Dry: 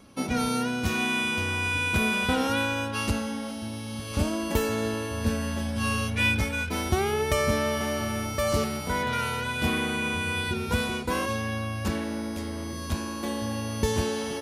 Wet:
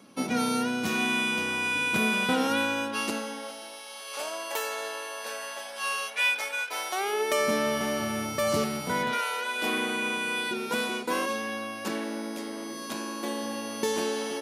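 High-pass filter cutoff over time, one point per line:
high-pass filter 24 dB per octave
0:02.73 160 Hz
0:03.87 560 Hz
0:06.94 560 Hz
0:07.75 130 Hz
0:09.06 130 Hz
0:09.24 510 Hz
0:09.79 240 Hz

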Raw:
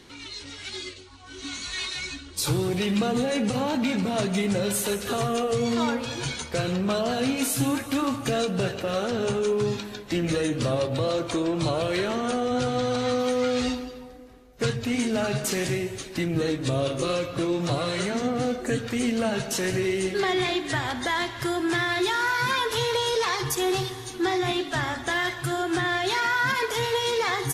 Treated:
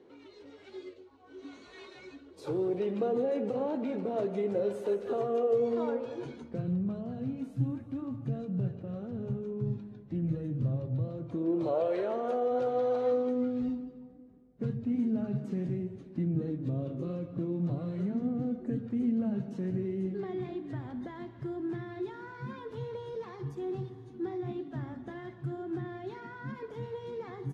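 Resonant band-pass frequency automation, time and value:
resonant band-pass, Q 2.1
0:06.16 450 Hz
0:06.78 140 Hz
0:11.25 140 Hz
0:11.75 560 Hz
0:13.03 560 Hz
0:13.54 190 Hz

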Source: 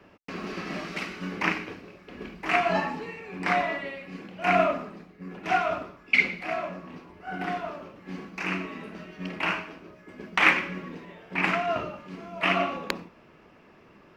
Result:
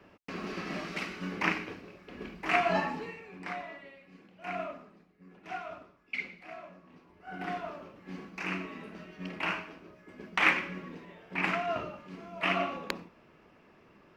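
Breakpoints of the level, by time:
0:03.05 −3 dB
0:03.58 −15 dB
0:06.84 −15 dB
0:07.51 −5 dB

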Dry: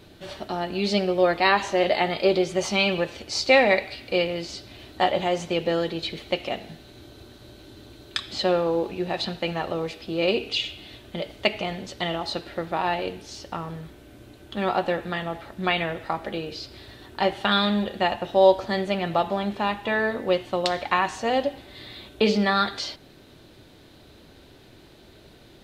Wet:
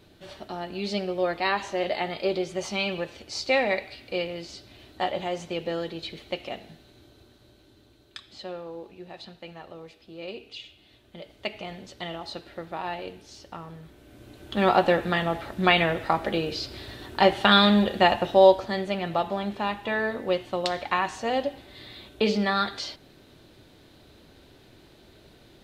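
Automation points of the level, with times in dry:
0:06.58 −6 dB
0:08.47 −15 dB
0:10.78 −15 dB
0:11.73 −7.5 dB
0:13.79 −7.5 dB
0:14.63 +4 dB
0:18.22 +4 dB
0:18.72 −3 dB

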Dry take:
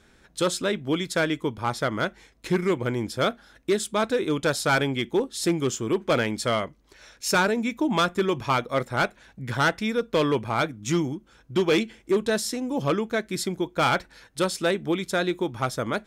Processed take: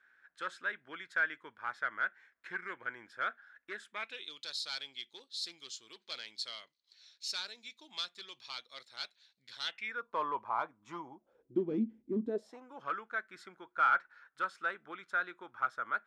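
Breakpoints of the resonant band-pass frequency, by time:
resonant band-pass, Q 5.5
0:03.87 1,600 Hz
0:04.34 4,200 Hz
0:09.62 4,200 Hz
0:10.08 1,000 Hz
0:11.07 1,000 Hz
0:11.68 240 Hz
0:12.24 240 Hz
0:12.65 1,400 Hz

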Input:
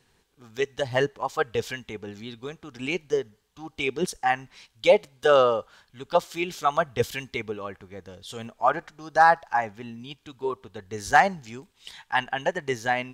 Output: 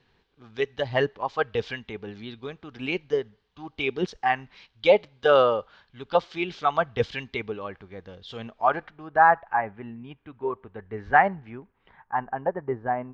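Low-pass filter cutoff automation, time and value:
low-pass filter 24 dB per octave
0:08.75 4,300 Hz
0:09.16 2,200 Hz
0:11.47 2,200 Hz
0:12.16 1,300 Hz

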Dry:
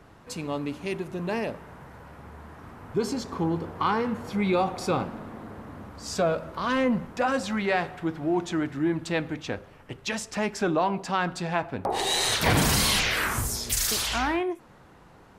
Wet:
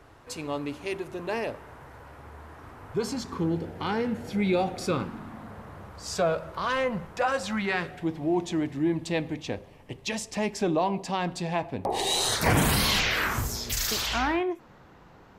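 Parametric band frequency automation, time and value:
parametric band −14 dB 0.43 octaves
0:02.84 190 Hz
0:03.57 1,100 Hz
0:04.72 1,100 Hz
0:05.72 250 Hz
0:07.41 250 Hz
0:08.06 1,400 Hz
0:12.07 1,400 Hz
0:12.92 9,500 Hz

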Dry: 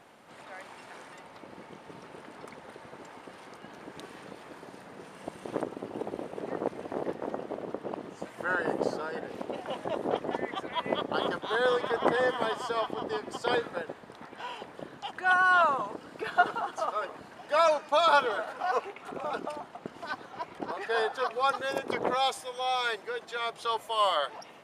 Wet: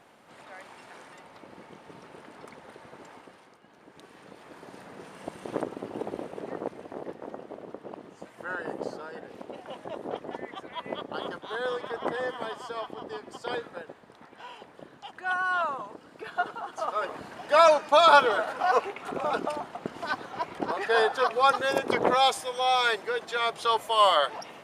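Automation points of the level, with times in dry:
0:03.15 −1 dB
0:03.62 −11 dB
0:04.79 +1.5 dB
0:06.16 +1.5 dB
0:06.99 −5 dB
0:16.58 −5 dB
0:17.13 +5.5 dB

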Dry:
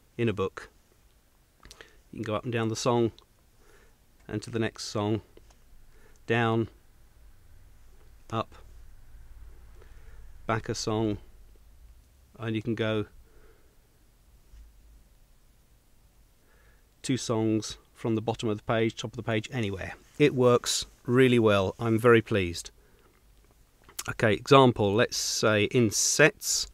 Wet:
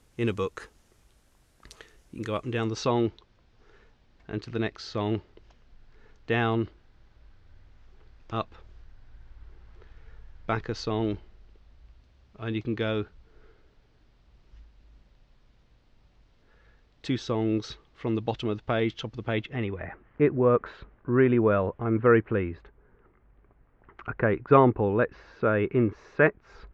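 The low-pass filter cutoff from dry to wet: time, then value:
low-pass filter 24 dB per octave
0:02.29 12,000 Hz
0:02.91 4,700 Hz
0:19.22 4,700 Hz
0:19.88 1,900 Hz

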